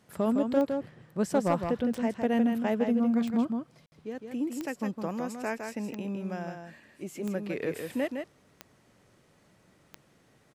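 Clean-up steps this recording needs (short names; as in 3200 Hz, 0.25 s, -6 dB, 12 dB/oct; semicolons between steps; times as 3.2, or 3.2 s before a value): de-click; room tone fill 3.86–3.92; inverse comb 0.16 s -6 dB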